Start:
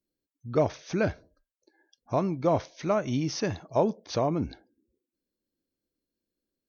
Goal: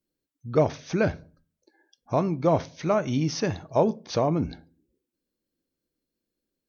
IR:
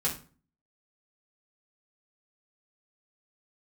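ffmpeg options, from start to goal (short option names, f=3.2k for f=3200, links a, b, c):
-filter_complex "[0:a]asplit=2[a][b];[b]lowpass=4.6k[c];[1:a]atrim=start_sample=2205[d];[c][d]afir=irnorm=-1:irlink=0,volume=-21dB[e];[a][e]amix=inputs=2:normalize=0,volume=2dB"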